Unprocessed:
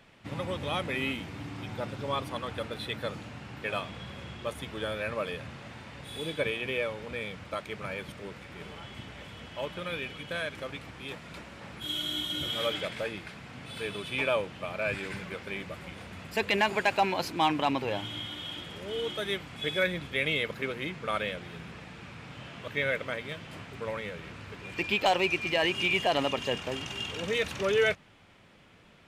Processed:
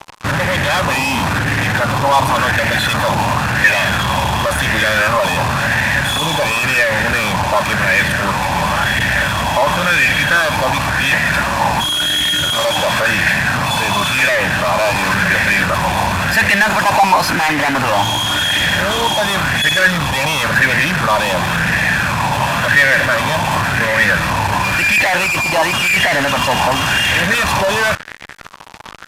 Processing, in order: bell 580 Hz +5.5 dB 0.2 oct; comb 1.2 ms, depth 77%; in parallel at -3 dB: negative-ratio compressor -38 dBFS; on the sum: fuzz box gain 43 dB, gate -42 dBFS; downsampling 32000 Hz; LFO bell 0.94 Hz 900–1900 Hz +14 dB; gain -3.5 dB

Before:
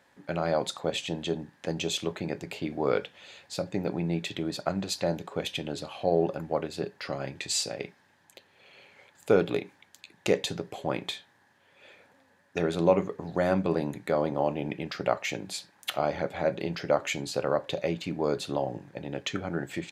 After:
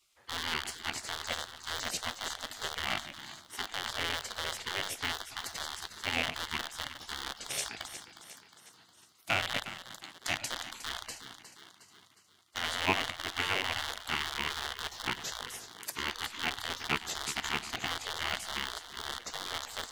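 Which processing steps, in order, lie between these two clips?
rattling part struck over -39 dBFS, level -15 dBFS; high shelf 3400 Hz +4 dB; split-band echo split 510 Hz, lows 0.115 s, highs 0.36 s, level -10.5 dB; spectral gate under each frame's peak -15 dB weak

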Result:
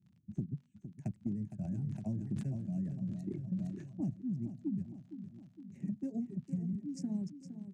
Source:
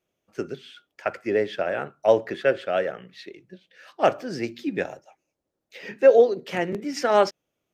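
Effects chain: Wiener smoothing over 9 samples; elliptic band-stop 200–7500 Hz, stop band 40 dB; reverb removal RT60 1.5 s; HPF 89 Hz 24 dB/oct; tilt -2 dB/oct; compressor 10:1, threshold -53 dBFS, peak gain reduction 24.5 dB; crackle 54/s -74 dBFS; air absorption 97 m; feedback echo 0.462 s, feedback 59%, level -11 dB; 1.57–4.11 sustainer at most 46 dB/s; gain +18 dB

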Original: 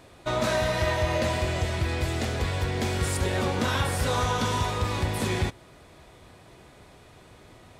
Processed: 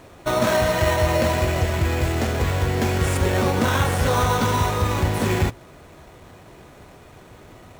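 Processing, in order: notches 60/120 Hz; in parallel at +1 dB: sample-and-hold 9×

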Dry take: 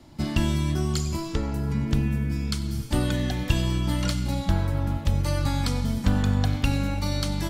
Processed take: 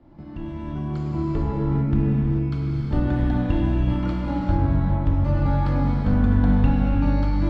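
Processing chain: opening faded in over 1.31 s; upward compressor, threshold -33 dBFS; Bessel low-pass 1100 Hz, order 2; non-linear reverb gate 0.47 s flat, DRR -3.5 dB

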